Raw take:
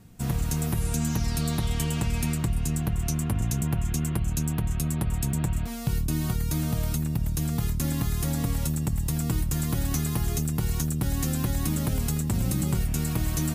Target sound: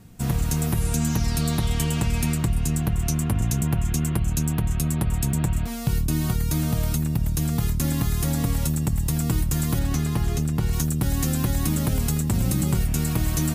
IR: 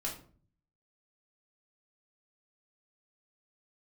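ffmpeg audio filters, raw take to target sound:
-filter_complex "[0:a]asettb=1/sr,asplit=3[link_01][link_02][link_03];[link_01]atrim=end=9.794[link_04];[link_02]atrim=start=9.79:end=10.73,asetpts=PTS-STARTPTS,afade=type=in:duration=0.004:curve=qsin,afade=type=out:start_time=0.936:duration=0.004:curve=qsin,highshelf=frequency=6800:gain=-11[link_05];[link_03]atrim=start=10.726[link_06];[link_04][link_05]acrossfade=duration=0.004:curve1=hsin:curve2=qsin[link_07];[link_07][link_06]acrossfade=duration=0.004:curve1=qsin:curve2=hsin,volume=3.5dB"

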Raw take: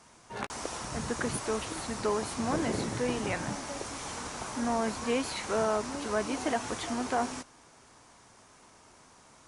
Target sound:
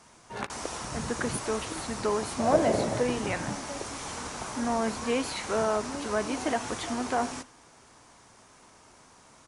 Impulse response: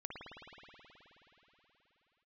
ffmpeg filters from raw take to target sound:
-filter_complex "[0:a]asettb=1/sr,asplit=3[link_01][link_02][link_03];[link_01]atrim=end=2.394[link_04];[link_02]atrim=start=2.39:end=3.03,asetpts=PTS-STARTPTS,afade=type=in:duration=0.004:curve=qsin,afade=type=out:start_time=0.636:duration=0.004:curve=qsin,equalizer=frequency=620:width=2.5:gain=14[link_05];[link_03]atrim=start=3.026[link_06];[link_04][link_05]acrossfade=duration=0.004:curve1=hsin:curve2=qsin[link_07];[link_07][link_06]acrossfade=duration=0.004:curve1=qsin:curve2=hsin,asplit=2[link_08][link_09];[link_09]adelay=93.29,volume=-23dB,highshelf=frequency=4000:gain=-2.1[link_10];[link_08][link_10]amix=inputs=2:normalize=0,asplit=2[link_11][link_12];[1:a]atrim=start_sample=2205,atrim=end_sample=4410[link_13];[link_12][link_13]afir=irnorm=-1:irlink=0,volume=-8.5dB[link_14];[link_11][link_14]amix=inputs=2:normalize=0"

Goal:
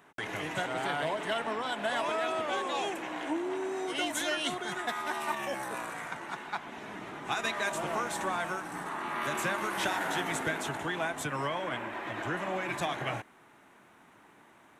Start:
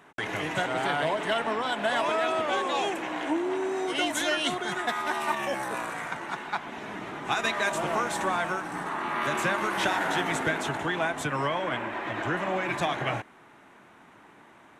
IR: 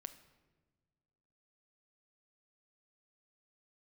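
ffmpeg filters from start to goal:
-af "asetnsamples=nb_out_samples=441:pad=0,asendcmd='8.4 highshelf g 11',highshelf=frequency=9200:gain=6,volume=-5dB"

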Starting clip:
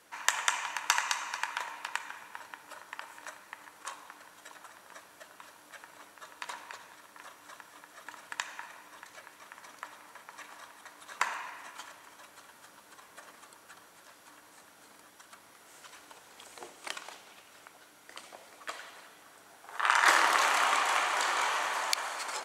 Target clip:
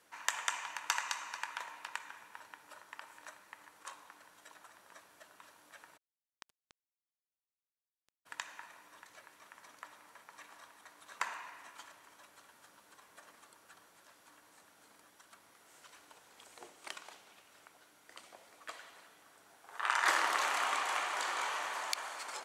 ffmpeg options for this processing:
ffmpeg -i in.wav -filter_complex "[0:a]asplit=3[link_01][link_02][link_03];[link_01]afade=type=out:start_time=5.96:duration=0.02[link_04];[link_02]acrusher=bits=3:mix=0:aa=0.5,afade=type=in:start_time=5.96:duration=0.02,afade=type=out:start_time=8.25:duration=0.02[link_05];[link_03]afade=type=in:start_time=8.25:duration=0.02[link_06];[link_04][link_05][link_06]amix=inputs=3:normalize=0,volume=-6.5dB" out.wav

